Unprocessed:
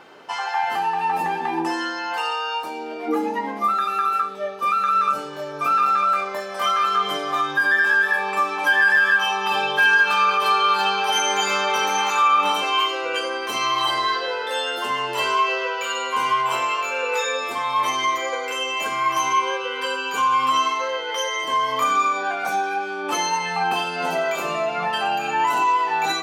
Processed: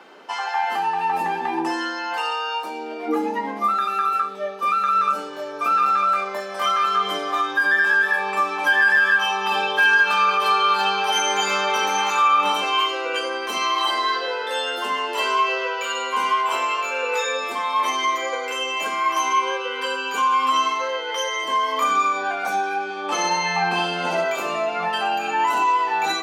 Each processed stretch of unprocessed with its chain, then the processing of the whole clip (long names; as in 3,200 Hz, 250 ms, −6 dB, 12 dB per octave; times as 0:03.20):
0:22.84–0:24.24: low-pass filter 8,300 Hz + flutter between parallel walls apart 10.8 metres, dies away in 0.75 s
whole clip: Butterworth high-pass 170 Hz 72 dB per octave; high-shelf EQ 11,000 Hz −3.5 dB